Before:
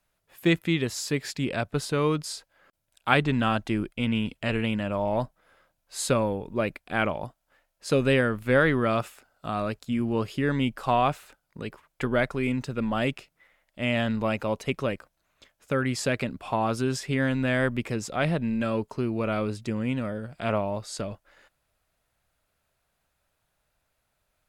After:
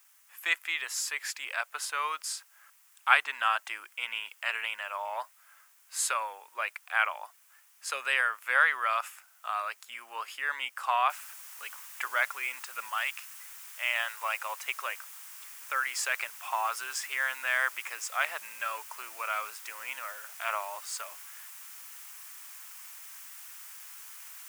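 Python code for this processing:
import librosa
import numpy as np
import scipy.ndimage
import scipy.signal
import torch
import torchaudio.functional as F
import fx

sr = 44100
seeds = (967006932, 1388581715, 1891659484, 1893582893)

y = fx.noise_floor_step(x, sr, seeds[0], at_s=11.1, before_db=-64, after_db=-49, tilt_db=0.0)
y = fx.highpass(y, sr, hz=fx.line((12.89, 920.0), (14.56, 340.0)), slope=12, at=(12.89, 14.56), fade=0.02)
y = scipy.signal.sosfilt(scipy.signal.butter(4, 990.0, 'highpass', fs=sr, output='sos'), y)
y = fx.peak_eq(y, sr, hz=4000.0, db=-8.5, octaves=0.73)
y = y * librosa.db_to_amplitude(3.0)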